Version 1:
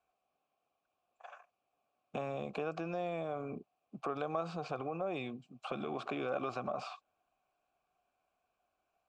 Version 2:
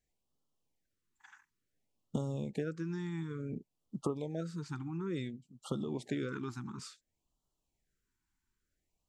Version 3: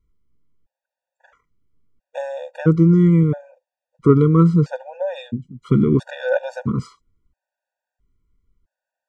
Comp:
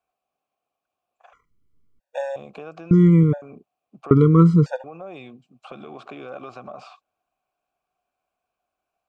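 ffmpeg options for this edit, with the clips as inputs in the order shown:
-filter_complex "[2:a]asplit=3[a][b][c];[0:a]asplit=4[d][e][f][g];[d]atrim=end=1.332[h];[a]atrim=start=1.328:end=2.362[i];[e]atrim=start=2.358:end=2.912[j];[b]atrim=start=2.908:end=3.422[k];[f]atrim=start=3.418:end=4.112[l];[c]atrim=start=4.108:end=4.842[m];[g]atrim=start=4.838[n];[h][i]acrossfade=d=0.004:c1=hsin:c2=hsin[o];[o][j]acrossfade=d=0.004:c1=hsin:c2=hsin[p];[p][k]acrossfade=d=0.004:c1=hsin:c2=hsin[q];[q][l]acrossfade=d=0.004:c1=hsin:c2=hsin[r];[r][m]acrossfade=d=0.004:c1=hsin:c2=hsin[s];[s][n]acrossfade=d=0.004:c1=hsin:c2=hsin"

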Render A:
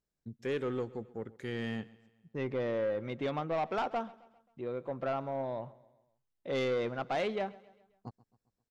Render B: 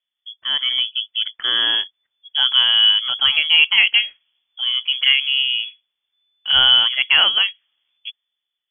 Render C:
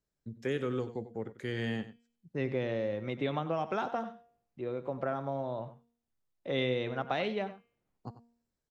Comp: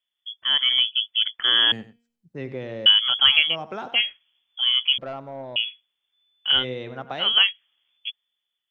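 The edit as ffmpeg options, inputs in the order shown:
-filter_complex "[2:a]asplit=3[a][b][c];[1:a]asplit=5[d][e][f][g][h];[d]atrim=end=1.722[i];[a]atrim=start=1.718:end=2.862[j];[e]atrim=start=2.858:end=3.56[k];[b]atrim=start=3.46:end=4.02[l];[f]atrim=start=3.92:end=4.982[m];[0:a]atrim=start=4.978:end=5.562[n];[g]atrim=start=5.558:end=6.65[o];[c]atrim=start=6.49:end=7.34[p];[h]atrim=start=7.18[q];[i][j]acrossfade=d=0.004:c1=hsin:c2=hsin[r];[r][k]acrossfade=d=0.004:c1=hsin:c2=hsin[s];[s][l]acrossfade=d=0.1:c1=tri:c2=tri[t];[t][m]acrossfade=d=0.1:c1=tri:c2=tri[u];[u][n]acrossfade=d=0.004:c1=hsin:c2=hsin[v];[v][o]acrossfade=d=0.004:c1=hsin:c2=hsin[w];[w][p]acrossfade=d=0.16:c1=tri:c2=tri[x];[x][q]acrossfade=d=0.16:c1=tri:c2=tri"

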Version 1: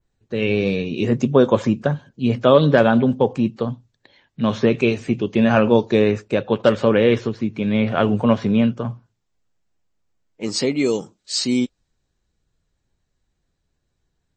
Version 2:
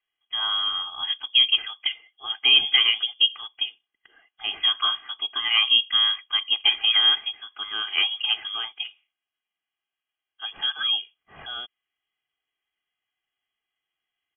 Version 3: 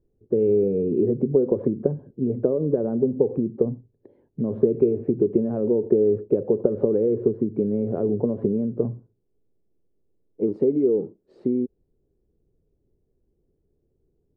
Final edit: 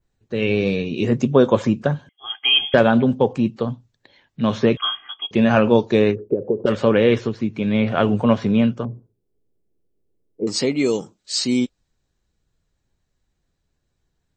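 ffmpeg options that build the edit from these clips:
-filter_complex "[1:a]asplit=2[a][b];[2:a]asplit=2[c][d];[0:a]asplit=5[e][f][g][h][i];[e]atrim=end=2.092[j];[a]atrim=start=2.088:end=2.742[k];[f]atrim=start=2.738:end=4.772[l];[b]atrim=start=4.768:end=5.312[m];[g]atrim=start=5.308:end=6.16[n];[c]atrim=start=6.1:end=6.71[o];[h]atrim=start=6.65:end=8.852[p];[d]atrim=start=8.848:end=10.472[q];[i]atrim=start=10.468[r];[j][k]acrossfade=d=0.004:c1=hsin:c2=hsin[s];[s][l]acrossfade=d=0.004:c1=hsin:c2=hsin[t];[t][m]acrossfade=d=0.004:c1=hsin:c2=hsin[u];[u][n]acrossfade=d=0.004:c1=hsin:c2=hsin[v];[v][o]acrossfade=d=0.06:c1=tri:c2=tri[w];[w][p]acrossfade=d=0.06:c1=tri:c2=tri[x];[x][q]acrossfade=d=0.004:c1=hsin:c2=hsin[y];[y][r]acrossfade=d=0.004:c1=hsin:c2=hsin"

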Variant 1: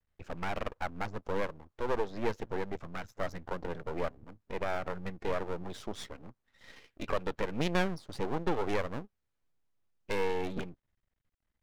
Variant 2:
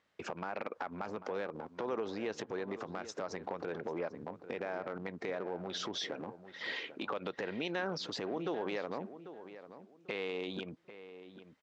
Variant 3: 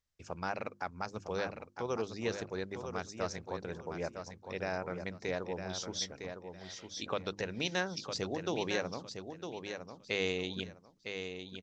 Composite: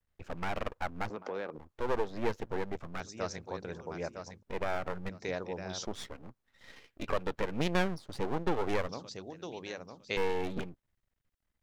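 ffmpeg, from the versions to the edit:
-filter_complex "[2:a]asplit=3[a][b][c];[0:a]asplit=5[d][e][f][g][h];[d]atrim=end=1.102[i];[1:a]atrim=start=1.098:end=1.582[j];[e]atrim=start=1.578:end=3.002[k];[a]atrim=start=2.998:end=4.432[l];[f]atrim=start=4.428:end=5.092[m];[b]atrim=start=5.088:end=5.852[n];[g]atrim=start=5.848:end=8.892[o];[c]atrim=start=8.888:end=10.172[p];[h]atrim=start=10.168[q];[i][j]acrossfade=d=0.004:c1=hsin:c2=hsin[r];[r][k]acrossfade=d=0.004:c1=hsin:c2=hsin[s];[s][l]acrossfade=d=0.004:c1=hsin:c2=hsin[t];[t][m]acrossfade=d=0.004:c1=hsin:c2=hsin[u];[u][n]acrossfade=d=0.004:c1=hsin:c2=hsin[v];[v][o]acrossfade=d=0.004:c1=hsin:c2=hsin[w];[w][p]acrossfade=d=0.004:c1=hsin:c2=hsin[x];[x][q]acrossfade=d=0.004:c1=hsin:c2=hsin"

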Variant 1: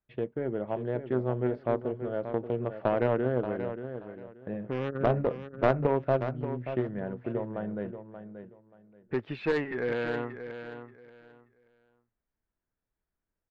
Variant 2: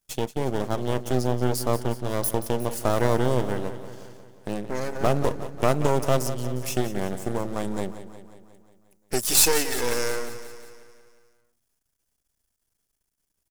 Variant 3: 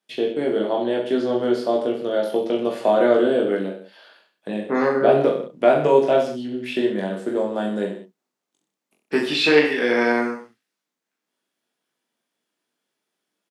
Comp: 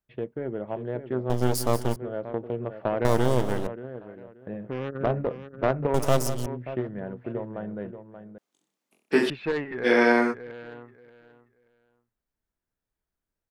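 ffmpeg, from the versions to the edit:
-filter_complex "[1:a]asplit=3[a][b][c];[2:a]asplit=2[d][e];[0:a]asplit=6[f][g][h][i][j][k];[f]atrim=end=1.302[l];[a]atrim=start=1.298:end=1.962[m];[g]atrim=start=1.958:end=3.052[n];[b]atrim=start=3.048:end=3.672[o];[h]atrim=start=3.668:end=5.942[p];[c]atrim=start=5.938:end=6.462[q];[i]atrim=start=6.458:end=8.382[r];[d]atrim=start=8.378:end=9.302[s];[j]atrim=start=9.298:end=9.87[t];[e]atrim=start=9.83:end=10.35[u];[k]atrim=start=10.31[v];[l][m]acrossfade=d=0.004:c1=hsin:c2=hsin[w];[w][n]acrossfade=d=0.004:c1=hsin:c2=hsin[x];[x][o]acrossfade=d=0.004:c1=hsin:c2=hsin[y];[y][p]acrossfade=d=0.004:c1=hsin:c2=hsin[z];[z][q]acrossfade=d=0.004:c1=hsin:c2=hsin[aa];[aa][r]acrossfade=d=0.004:c1=hsin:c2=hsin[ab];[ab][s]acrossfade=d=0.004:c1=hsin:c2=hsin[ac];[ac][t]acrossfade=d=0.004:c1=hsin:c2=hsin[ad];[ad][u]acrossfade=d=0.04:c1=tri:c2=tri[ae];[ae][v]acrossfade=d=0.04:c1=tri:c2=tri"

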